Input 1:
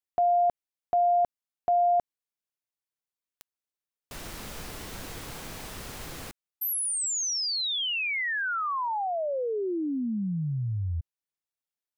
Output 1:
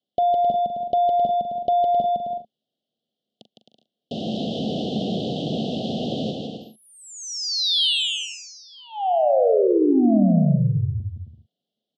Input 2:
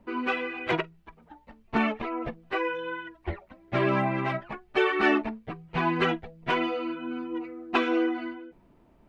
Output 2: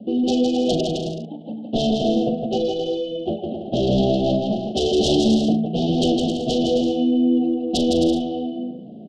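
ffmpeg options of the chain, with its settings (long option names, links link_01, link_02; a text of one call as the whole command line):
ffmpeg -i in.wav -filter_complex "[0:a]highpass=frequency=140:width=0.5412,highpass=frequency=140:width=1.3066,equalizer=frequency=220:width_type=q:width=4:gain=8,equalizer=frequency=350:width_type=q:width=4:gain=-3,equalizer=frequency=1300:width_type=q:width=4:gain=-8,lowpass=frequency=3300:width=0.5412,lowpass=frequency=3300:width=1.3066,aeval=exprs='0.355*sin(PI/2*5.01*val(0)/0.355)':channel_layout=same,asuperstop=centerf=1500:order=20:qfactor=0.68,asplit=2[link_01][link_02];[link_02]adelay=41,volume=-11dB[link_03];[link_01][link_03]amix=inputs=2:normalize=0,acompressor=threshold=-33dB:ratio=1.5:attack=28:release=33:knee=1:detection=peak,aecho=1:1:160|264|331.6|375.5|404.1:0.631|0.398|0.251|0.158|0.1" out.wav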